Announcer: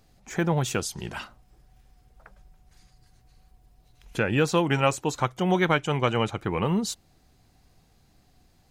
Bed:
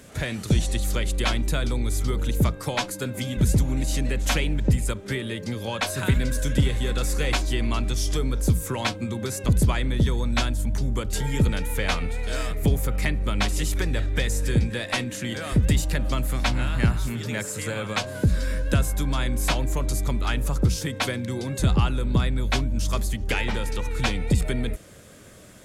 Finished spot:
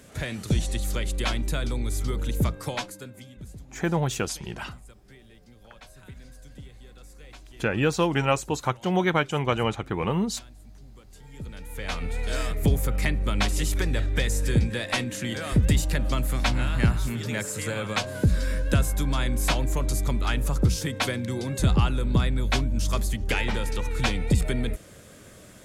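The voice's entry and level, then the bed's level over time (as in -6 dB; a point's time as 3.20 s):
3.45 s, -0.5 dB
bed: 2.70 s -3 dB
3.52 s -23.5 dB
11.18 s -23.5 dB
12.17 s -0.5 dB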